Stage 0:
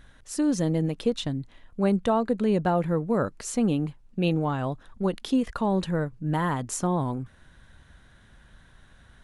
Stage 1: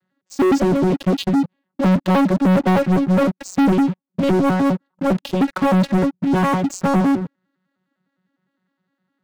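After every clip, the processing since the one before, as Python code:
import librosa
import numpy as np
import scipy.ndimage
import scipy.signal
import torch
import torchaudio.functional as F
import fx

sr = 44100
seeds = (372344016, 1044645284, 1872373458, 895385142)

y = fx.vocoder_arp(x, sr, chord='bare fifth', root=54, every_ms=102)
y = fx.leveller(y, sr, passes=5)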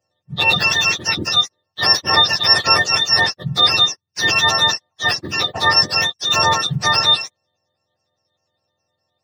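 y = fx.octave_mirror(x, sr, pivot_hz=1000.0)
y = fx.peak_eq(y, sr, hz=250.0, db=-13.5, octaves=0.26)
y = F.gain(torch.from_numpy(y), 4.5).numpy()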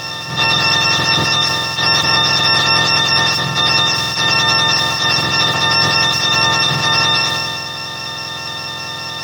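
y = fx.bin_compress(x, sr, power=0.2)
y = fx.sustainer(y, sr, db_per_s=22.0)
y = F.gain(torch.from_numpy(y), -6.5).numpy()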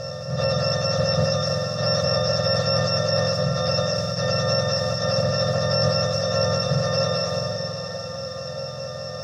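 y = fx.curve_eq(x, sr, hz=(150.0, 220.0, 350.0, 550.0, 900.0, 1300.0, 2000.0, 3500.0, 5300.0, 14000.0), db=(0, -6, -29, 12, -23, -9, -19, -24, -10, -26))
y = fx.echo_diffused(y, sr, ms=632, feedback_pct=45, wet_db=-9)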